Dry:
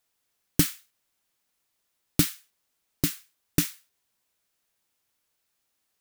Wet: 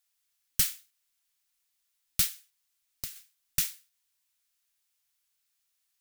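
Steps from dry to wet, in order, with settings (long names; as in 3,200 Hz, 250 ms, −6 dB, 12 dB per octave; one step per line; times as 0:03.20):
guitar amp tone stack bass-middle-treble 10-0-10
0:02.26–0:03.16: downward compressor 12 to 1, threshold −34 dBFS, peak gain reduction 11 dB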